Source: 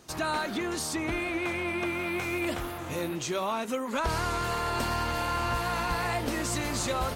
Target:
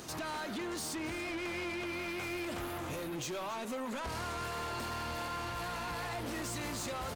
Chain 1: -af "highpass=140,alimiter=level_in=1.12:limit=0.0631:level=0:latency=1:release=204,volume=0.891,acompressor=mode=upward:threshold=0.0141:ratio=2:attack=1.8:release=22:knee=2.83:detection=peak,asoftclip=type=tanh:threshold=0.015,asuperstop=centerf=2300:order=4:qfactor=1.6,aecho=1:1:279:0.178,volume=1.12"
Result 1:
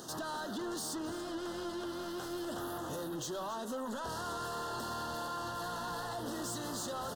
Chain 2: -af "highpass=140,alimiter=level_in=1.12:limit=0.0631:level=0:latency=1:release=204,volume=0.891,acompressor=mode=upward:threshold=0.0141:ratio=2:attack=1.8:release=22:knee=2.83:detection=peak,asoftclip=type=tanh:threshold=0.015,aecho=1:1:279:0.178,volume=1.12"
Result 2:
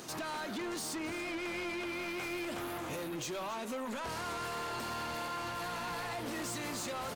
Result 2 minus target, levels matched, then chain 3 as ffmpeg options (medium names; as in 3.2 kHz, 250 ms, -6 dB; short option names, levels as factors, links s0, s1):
125 Hz band -4.0 dB
-af "highpass=59,alimiter=level_in=1.12:limit=0.0631:level=0:latency=1:release=204,volume=0.891,acompressor=mode=upward:threshold=0.0141:ratio=2:attack=1.8:release=22:knee=2.83:detection=peak,asoftclip=type=tanh:threshold=0.015,aecho=1:1:279:0.178,volume=1.12"